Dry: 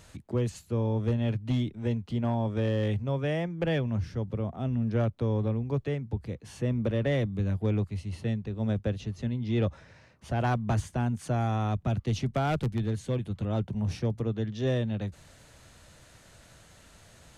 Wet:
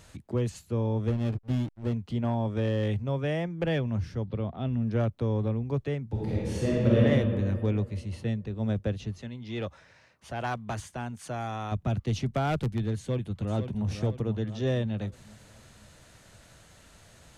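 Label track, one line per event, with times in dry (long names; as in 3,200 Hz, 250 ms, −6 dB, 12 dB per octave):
1.100000	1.930000	slack as between gear wheels play −30.5 dBFS
4.250000	4.730000	high shelf with overshoot 5,500 Hz −10 dB, Q 3
6.060000	6.990000	thrown reverb, RT60 2.2 s, DRR −7 dB
9.180000	11.720000	low-shelf EQ 410 Hz −10.5 dB
12.970000	13.870000	delay throw 500 ms, feedback 45%, level −8.5 dB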